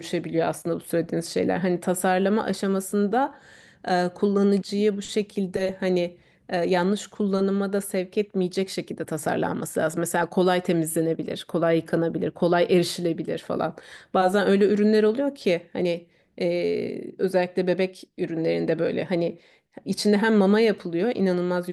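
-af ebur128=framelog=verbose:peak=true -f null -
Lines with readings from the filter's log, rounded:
Integrated loudness:
  I:         -24.3 LUFS
  Threshold: -34.4 LUFS
Loudness range:
  LRA:         3.0 LU
  Threshold: -44.5 LUFS
  LRA low:   -26.1 LUFS
  LRA high:  -23.1 LUFS
True peak:
  Peak:       -8.1 dBFS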